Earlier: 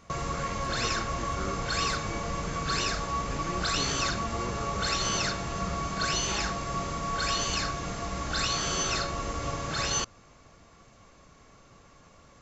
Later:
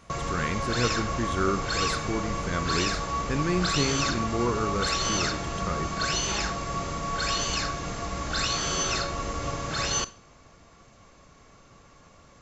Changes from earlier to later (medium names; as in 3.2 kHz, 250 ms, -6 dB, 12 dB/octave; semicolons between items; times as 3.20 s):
speech +8.5 dB; reverb: on, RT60 0.50 s